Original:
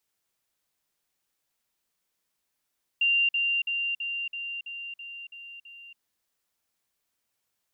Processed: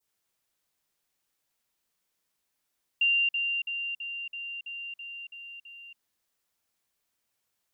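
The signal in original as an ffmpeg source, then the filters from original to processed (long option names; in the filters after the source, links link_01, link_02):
-f lavfi -i "aevalsrc='pow(10,(-20-3*floor(t/0.33))/20)*sin(2*PI*2780*t)*clip(min(mod(t,0.33),0.28-mod(t,0.33))/0.005,0,1)':duration=2.97:sample_rate=44100"
-af "adynamicequalizer=threshold=0.0141:dfrequency=2600:dqfactor=0.76:tfrequency=2600:tqfactor=0.76:attack=5:release=100:ratio=0.375:range=2.5:mode=cutabove:tftype=bell"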